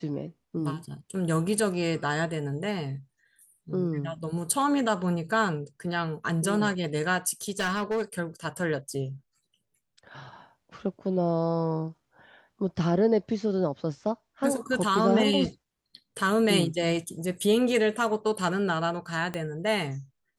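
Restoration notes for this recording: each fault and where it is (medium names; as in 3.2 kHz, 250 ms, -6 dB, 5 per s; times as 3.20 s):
7.50–8.03 s: clipped -24 dBFS
19.34 s: pop -18 dBFS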